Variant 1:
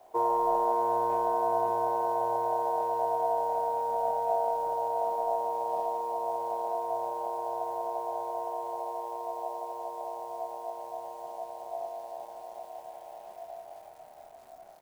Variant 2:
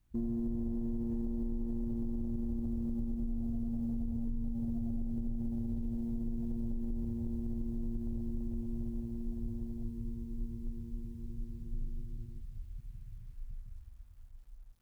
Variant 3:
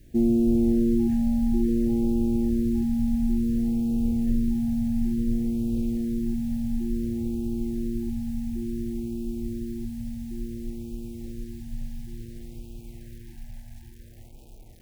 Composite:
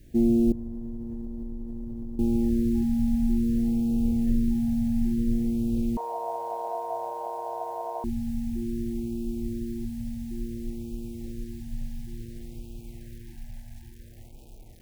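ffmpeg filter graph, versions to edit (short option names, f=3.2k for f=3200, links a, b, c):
-filter_complex "[2:a]asplit=3[a][b][c];[a]atrim=end=0.522[d];[1:a]atrim=start=0.518:end=2.192[e];[b]atrim=start=2.188:end=5.972[f];[0:a]atrim=start=5.968:end=8.042[g];[c]atrim=start=8.038[h];[d][e]acrossfade=d=0.004:c1=hsin:c2=hsin[i];[i][f]acrossfade=d=0.004:c1=hsin:c2=hsin[j];[j][g]acrossfade=d=0.004:c1=hsin:c2=hsin[k];[k][h]acrossfade=d=0.004:c1=hsin:c2=hsin"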